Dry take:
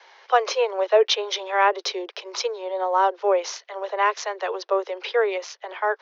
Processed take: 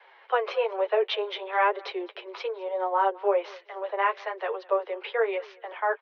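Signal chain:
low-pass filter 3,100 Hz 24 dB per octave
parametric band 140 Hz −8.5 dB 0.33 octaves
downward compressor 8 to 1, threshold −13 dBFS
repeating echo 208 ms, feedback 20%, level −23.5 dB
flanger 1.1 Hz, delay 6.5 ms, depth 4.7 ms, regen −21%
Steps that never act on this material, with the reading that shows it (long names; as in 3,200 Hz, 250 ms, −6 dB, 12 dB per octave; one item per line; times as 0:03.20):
parametric band 140 Hz: nothing at its input below 340 Hz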